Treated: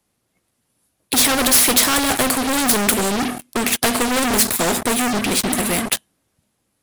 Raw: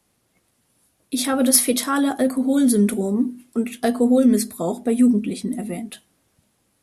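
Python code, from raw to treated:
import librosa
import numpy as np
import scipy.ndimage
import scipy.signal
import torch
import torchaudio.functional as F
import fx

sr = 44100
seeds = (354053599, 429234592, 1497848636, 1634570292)

y = fx.leveller(x, sr, passes=5)
y = fx.spectral_comp(y, sr, ratio=2.0)
y = F.gain(torch.from_numpy(y), 1.0).numpy()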